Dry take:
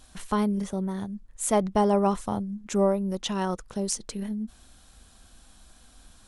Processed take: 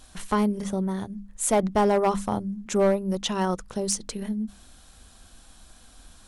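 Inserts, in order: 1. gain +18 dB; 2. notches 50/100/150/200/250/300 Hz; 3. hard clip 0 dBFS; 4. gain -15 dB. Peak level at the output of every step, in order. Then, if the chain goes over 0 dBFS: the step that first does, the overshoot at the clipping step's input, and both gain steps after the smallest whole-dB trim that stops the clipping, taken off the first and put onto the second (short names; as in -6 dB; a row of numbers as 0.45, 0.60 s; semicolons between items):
+8.5, +8.5, 0.0, -15.0 dBFS; step 1, 8.5 dB; step 1 +9 dB, step 4 -6 dB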